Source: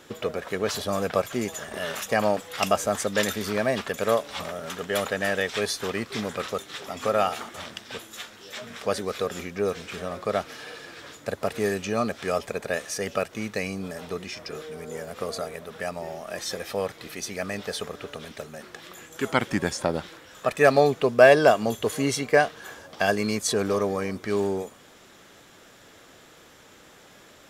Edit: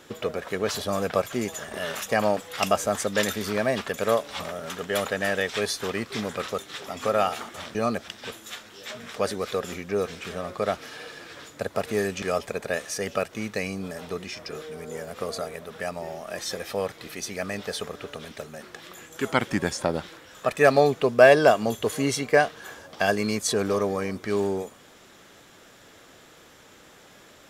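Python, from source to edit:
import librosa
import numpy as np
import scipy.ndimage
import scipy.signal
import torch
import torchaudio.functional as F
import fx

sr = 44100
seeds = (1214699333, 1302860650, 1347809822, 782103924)

y = fx.edit(x, sr, fx.move(start_s=11.89, length_s=0.33, to_s=7.75), tone=tone)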